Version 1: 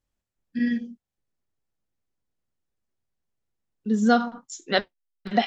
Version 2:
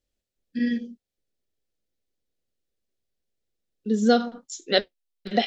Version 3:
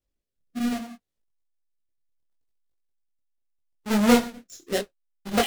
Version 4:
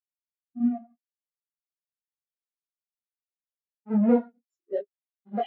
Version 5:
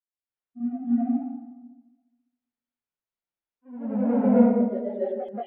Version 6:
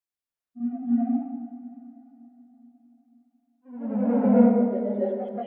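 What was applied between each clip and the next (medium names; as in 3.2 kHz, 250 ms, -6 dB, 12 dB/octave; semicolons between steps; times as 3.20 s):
ten-band graphic EQ 125 Hz -6 dB, 500 Hz +7 dB, 1 kHz -11 dB, 4 kHz +5 dB
square wave that keeps the level; rotary cabinet horn 0.7 Hz; detune thickener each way 26 cents
overdrive pedal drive 24 dB, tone 2.2 kHz, clips at -5 dBFS; spectral contrast expander 2.5:1; trim -4.5 dB
distance through air 310 m; reverberation RT60 1.2 s, pre-delay 246 ms, DRR -8.5 dB; ever faster or slower copies 124 ms, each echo +1 st, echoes 3, each echo -6 dB; trim -4.5 dB
plate-style reverb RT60 4 s, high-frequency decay 0.8×, DRR 10 dB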